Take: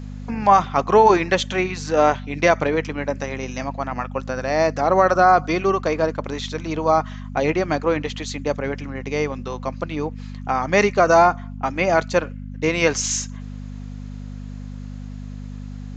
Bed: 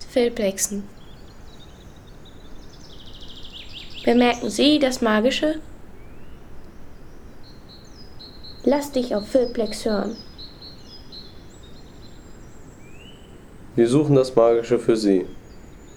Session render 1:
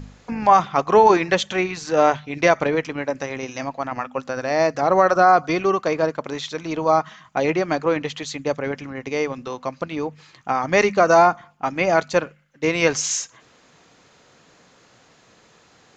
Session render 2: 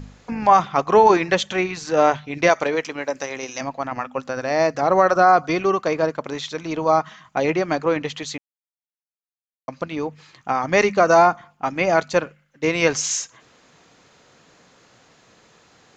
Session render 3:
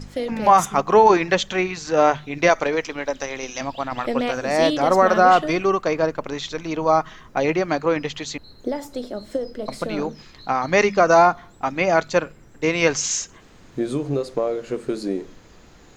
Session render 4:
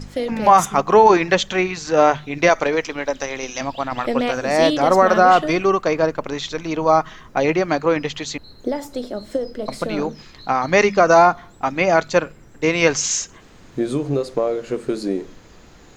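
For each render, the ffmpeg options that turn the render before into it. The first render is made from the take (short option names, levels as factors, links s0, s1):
-af "bandreject=f=50:t=h:w=4,bandreject=f=100:t=h:w=4,bandreject=f=150:t=h:w=4,bandreject=f=200:t=h:w=4,bandreject=f=250:t=h:w=4"
-filter_complex "[0:a]asettb=1/sr,asplit=3[s0][s1][s2];[s0]atrim=end=2.494[s3];[s1]atrim=start=2.49:end=3.61,asetpts=PTS-STARTPTS,afade=t=in:d=0.004:c=qsin,afade=t=out:st=1.116:d=0.004:c=qsin,bass=f=250:g=-10,treble=f=4000:g=7[s4];[s2]atrim=start=3.606[s5];[s3][s4]acrossfade=d=0.004:c1=hsin:c2=qsin[s6];[s6][s5]acrossfade=d=0.004:c1=qsin:c2=hsin,asplit=3[s7][s8][s9];[s7]atrim=end=8.38,asetpts=PTS-STARTPTS,afade=t=out:st=8.376:d=0.004:c=hsin[s10];[s8]atrim=start=8.38:end=9.68,asetpts=PTS-STARTPTS,volume=0[s11];[s9]atrim=start=9.68,asetpts=PTS-STARTPTS,afade=t=in:d=0.004:c=hsin[s12];[s10][s11][s12]concat=n=3:v=0:a=1"
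-filter_complex "[1:a]volume=0.422[s0];[0:a][s0]amix=inputs=2:normalize=0"
-af "volume=1.33,alimiter=limit=0.794:level=0:latency=1"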